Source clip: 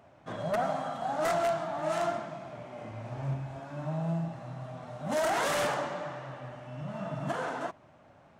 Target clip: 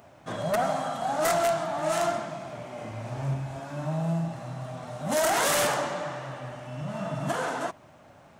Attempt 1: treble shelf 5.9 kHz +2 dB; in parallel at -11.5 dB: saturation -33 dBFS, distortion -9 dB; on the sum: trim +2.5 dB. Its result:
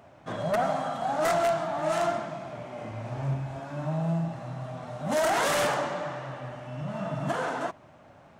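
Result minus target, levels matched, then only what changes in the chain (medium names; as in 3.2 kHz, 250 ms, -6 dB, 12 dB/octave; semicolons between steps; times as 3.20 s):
8 kHz band -6.0 dB
change: treble shelf 5.9 kHz +12.5 dB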